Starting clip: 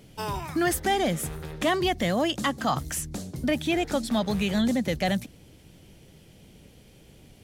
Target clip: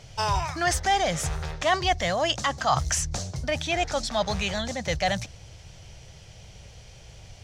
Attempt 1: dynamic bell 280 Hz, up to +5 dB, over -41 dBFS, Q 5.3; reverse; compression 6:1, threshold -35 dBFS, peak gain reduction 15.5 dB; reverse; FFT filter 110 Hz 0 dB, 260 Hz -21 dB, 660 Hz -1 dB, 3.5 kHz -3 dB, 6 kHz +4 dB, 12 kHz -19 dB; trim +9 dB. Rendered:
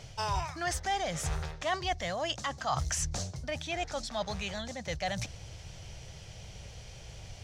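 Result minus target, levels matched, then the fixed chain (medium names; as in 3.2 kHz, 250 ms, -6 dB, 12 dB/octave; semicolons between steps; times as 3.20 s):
compression: peak gain reduction +8.5 dB
dynamic bell 280 Hz, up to +5 dB, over -41 dBFS, Q 5.3; reverse; compression 6:1, threshold -24.5 dBFS, peak gain reduction 6.5 dB; reverse; FFT filter 110 Hz 0 dB, 260 Hz -21 dB, 660 Hz -1 dB, 3.5 kHz -3 dB, 6 kHz +4 dB, 12 kHz -19 dB; trim +9 dB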